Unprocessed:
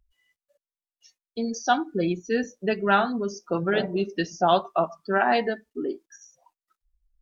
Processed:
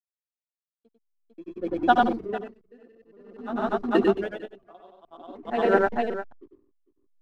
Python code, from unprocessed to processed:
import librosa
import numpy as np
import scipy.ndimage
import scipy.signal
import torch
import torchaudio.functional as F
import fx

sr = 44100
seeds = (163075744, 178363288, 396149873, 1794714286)

p1 = fx.block_reorder(x, sr, ms=146.0, group=5)
p2 = scipy.signal.sosfilt(scipy.signal.ellip(3, 1.0, 40, [250.0, 3700.0], 'bandpass', fs=sr, output='sos'), p1)
p3 = fx.granulator(p2, sr, seeds[0], grain_ms=100.0, per_s=20.0, spray_ms=100.0, spread_st=0)
p4 = fx.backlash(p3, sr, play_db=-38.0)
p5 = fx.tilt_eq(p4, sr, slope=-2.5)
p6 = p5 + fx.echo_multitap(p5, sr, ms=(97, 450), db=(-3.0, -5.5), dry=0)
p7 = p6 * 10.0 ** (-35 * (0.5 - 0.5 * np.cos(2.0 * np.pi * 0.51 * np.arange(len(p6)) / sr)) / 20.0)
y = F.gain(torch.from_numpy(p7), 4.0).numpy()